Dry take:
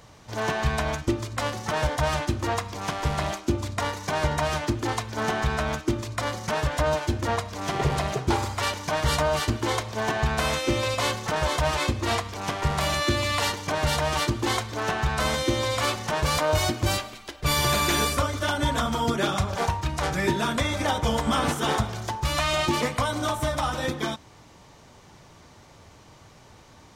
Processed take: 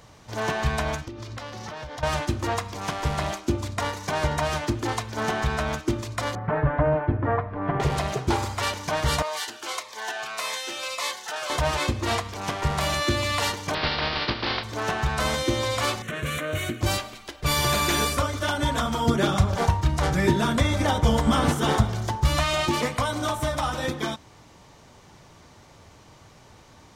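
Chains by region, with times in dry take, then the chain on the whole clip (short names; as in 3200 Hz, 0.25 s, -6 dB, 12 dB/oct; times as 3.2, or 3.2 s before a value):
1.04–2.03 resonant high shelf 6700 Hz -6.5 dB, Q 1.5 + compressor 16:1, threshold -32 dBFS
6.35–7.8 LPF 1800 Hz 24 dB/oct + low shelf 320 Hz +4.5 dB + comb 6.9 ms, depth 54%
9.22–11.5 HPF 810 Hz + cascading phaser falling 1.7 Hz
13.73–14.63 spectral contrast lowered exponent 0.4 + steep low-pass 4900 Hz 72 dB/oct
16.02–16.81 HPF 110 Hz + fixed phaser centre 2100 Hz, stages 4 + Doppler distortion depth 0.11 ms
19.06–22.44 low shelf 320 Hz +7 dB + notch 2500 Hz, Q 24
whole clip: dry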